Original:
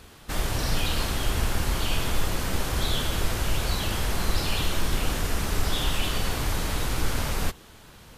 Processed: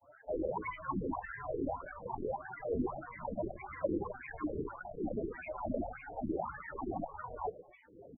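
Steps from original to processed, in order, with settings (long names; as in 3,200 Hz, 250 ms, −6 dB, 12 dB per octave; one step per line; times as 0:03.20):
each half-wave held at its own peak
low-shelf EQ 290 Hz +8.5 dB
tuned comb filter 580 Hz, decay 0.23 s, harmonics all, mix 80%
in parallel at 0 dB: downward compressor, threshold −23 dBFS, peak gain reduction 13.5 dB
on the sum: octave-band graphic EQ 1,000/2,000/8,000 Hz −9/−4/−7 dB
on a send: single-tap delay 264 ms −20.5 dB
on the sum: LFO wah 1.7 Hz 380–1,300 Hz, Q 7.6
granular cloud, spray 23 ms, pitch spread up and down by 12 semitones
spectral peaks only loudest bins 16
mains-hum notches 50/100/150 Hz
level +13.5 dB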